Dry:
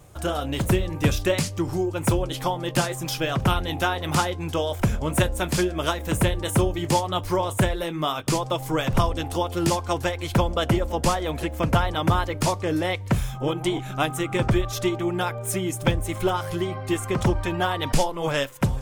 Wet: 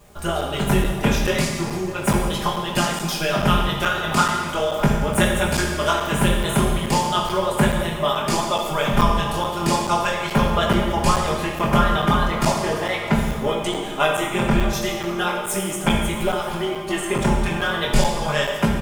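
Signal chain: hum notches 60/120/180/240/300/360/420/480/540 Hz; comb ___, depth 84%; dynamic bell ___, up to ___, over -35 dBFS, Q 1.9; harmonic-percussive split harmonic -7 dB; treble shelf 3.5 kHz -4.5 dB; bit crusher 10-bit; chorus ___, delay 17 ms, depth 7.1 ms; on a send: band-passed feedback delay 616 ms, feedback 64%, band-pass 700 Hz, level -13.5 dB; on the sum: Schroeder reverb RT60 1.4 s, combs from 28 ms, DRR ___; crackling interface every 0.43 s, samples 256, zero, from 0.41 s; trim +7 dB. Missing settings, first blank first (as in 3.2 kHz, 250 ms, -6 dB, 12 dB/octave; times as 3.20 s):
4.9 ms, 250 Hz, -3 dB, 0.37 Hz, 1.5 dB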